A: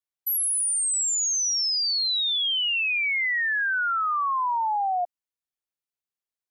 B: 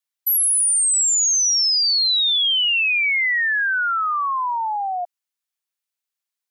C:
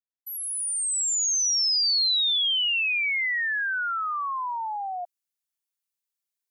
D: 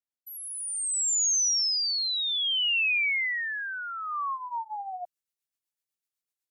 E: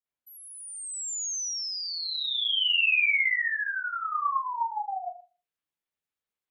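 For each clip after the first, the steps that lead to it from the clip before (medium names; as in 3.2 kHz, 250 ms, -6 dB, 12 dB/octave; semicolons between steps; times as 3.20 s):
high-pass 1.4 kHz 6 dB/octave; trim +7 dB
fade-in on the opening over 2.00 s; treble shelf 4.9 kHz +7.5 dB; trim -7.5 dB
rotary cabinet horn 0.6 Hz, later 8 Hz, at 4.05 s
reverberation, pre-delay 39 ms, DRR -10 dB; trim -7.5 dB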